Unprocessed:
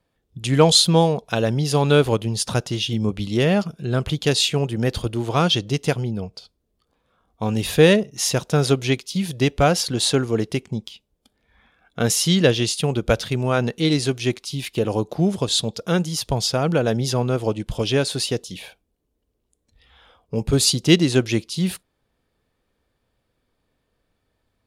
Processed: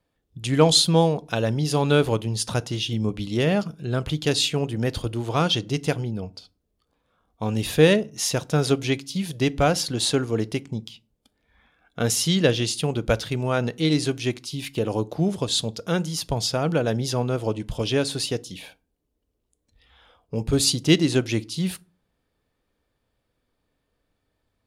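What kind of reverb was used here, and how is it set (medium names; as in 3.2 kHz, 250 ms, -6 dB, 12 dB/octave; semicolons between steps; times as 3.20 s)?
FDN reverb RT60 0.36 s, low-frequency decay 1.55×, high-frequency decay 0.65×, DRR 17 dB; trim -3 dB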